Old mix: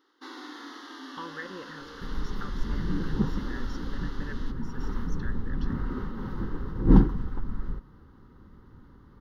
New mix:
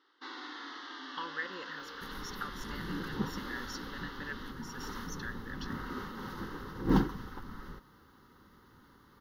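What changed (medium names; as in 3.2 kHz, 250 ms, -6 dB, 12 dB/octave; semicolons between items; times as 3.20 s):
first sound: add distance through air 230 m; master: add tilt EQ +3.5 dB/octave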